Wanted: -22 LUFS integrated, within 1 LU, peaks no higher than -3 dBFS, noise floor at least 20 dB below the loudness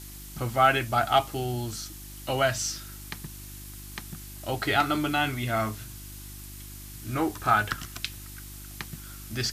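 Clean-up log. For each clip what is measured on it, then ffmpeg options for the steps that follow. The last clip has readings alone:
hum 50 Hz; highest harmonic 350 Hz; hum level -41 dBFS; noise floor -43 dBFS; noise floor target -48 dBFS; loudness -27.5 LUFS; peak level -8.5 dBFS; loudness target -22.0 LUFS
-> -af "bandreject=f=50:t=h:w=4,bandreject=f=100:t=h:w=4,bandreject=f=150:t=h:w=4,bandreject=f=200:t=h:w=4,bandreject=f=250:t=h:w=4,bandreject=f=300:t=h:w=4,bandreject=f=350:t=h:w=4"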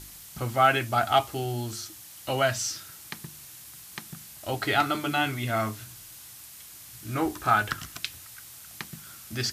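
hum not found; noise floor -47 dBFS; noise floor target -48 dBFS
-> -af "afftdn=nr=6:nf=-47"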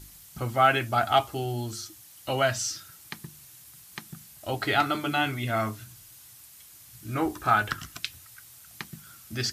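noise floor -51 dBFS; loudness -27.0 LUFS; peak level -8.5 dBFS; loudness target -22.0 LUFS
-> -af "volume=1.78"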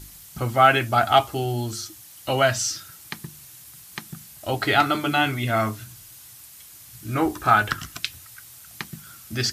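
loudness -22.0 LUFS; peak level -3.5 dBFS; noise floor -46 dBFS

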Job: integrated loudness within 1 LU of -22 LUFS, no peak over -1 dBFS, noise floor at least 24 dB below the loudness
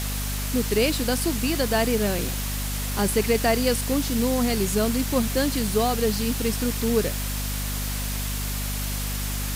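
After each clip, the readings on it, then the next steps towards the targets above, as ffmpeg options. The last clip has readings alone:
hum 50 Hz; highest harmonic 250 Hz; hum level -27 dBFS; noise floor -28 dBFS; noise floor target -49 dBFS; loudness -24.5 LUFS; peak level -8.5 dBFS; loudness target -22.0 LUFS
-> -af "bandreject=f=50:t=h:w=4,bandreject=f=100:t=h:w=4,bandreject=f=150:t=h:w=4,bandreject=f=200:t=h:w=4,bandreject=f=250:t=h:w=4"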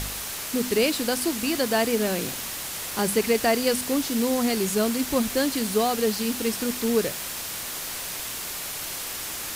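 hum not found; noise floor -33 dBFS; noise floor target -49 dBFS
-> -af "afftdn=nr=16:nf=-33"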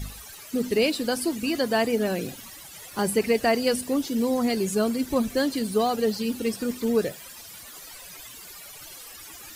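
noise floor -44 dBFS; noise floor target -50 dBFS
-> -af "afftdn=nr=6:nf=-44"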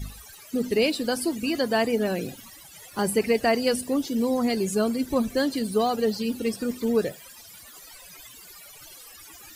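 noise floor -47 dBFS; noise floor target -50 dBFS
-> -af "afftdn=nr=6:nf=-47"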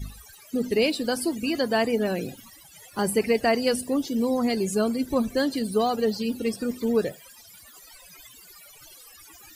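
noise floor -50 dBFS; loudness -25.5 LUFS; peak level -10.5 dBFS; loudness target -22.0 LUFS
-> -af "volume=1.5"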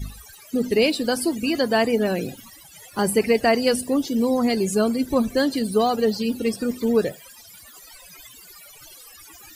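loudness -22.0 LUFS; peak level -7.0 dBFS; noise floor -47 dBFS

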